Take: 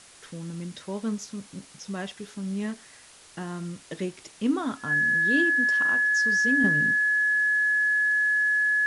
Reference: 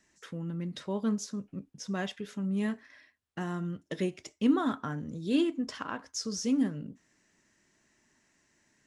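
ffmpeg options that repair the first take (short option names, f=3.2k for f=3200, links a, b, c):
-af "bandreject=f=1.7k:w=30,afwtdn=0.0035,asetnsamples=n=441:p=0,asendcmd='6.64 volume volume -7.5dB',volume=0dB"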